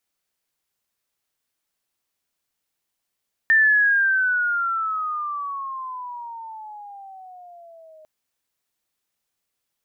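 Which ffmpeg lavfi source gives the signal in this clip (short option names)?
-f lavfi -i "aevalsrc='pow(10,(-12-32.5*t/4.55)/20)*sin(2*PI*1800*4.55/(-18.5*log(2)/12)*(exp(-18.5*log(2)/12*t/4.55)-1))':d=4.55:s=44100"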